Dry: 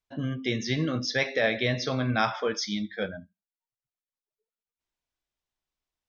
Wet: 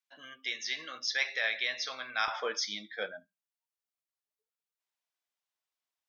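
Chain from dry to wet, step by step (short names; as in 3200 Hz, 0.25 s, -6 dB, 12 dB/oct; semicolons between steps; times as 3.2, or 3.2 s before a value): HPF 1300 Hz 12 dB/oct, from 2.28 s 600 Hz; gain -1.5 dB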